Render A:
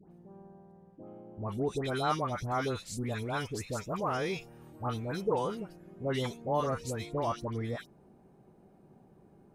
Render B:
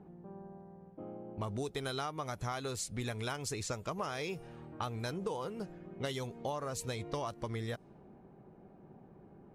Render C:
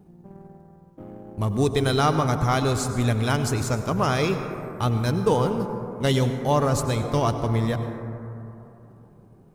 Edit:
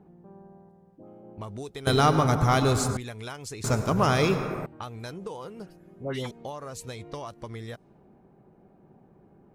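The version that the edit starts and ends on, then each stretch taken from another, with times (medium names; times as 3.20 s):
B
0.69–1.23 s: from A
1.87–2.97 s: from C
3.64–4.66 s: from C
5.67–6.31 s: from A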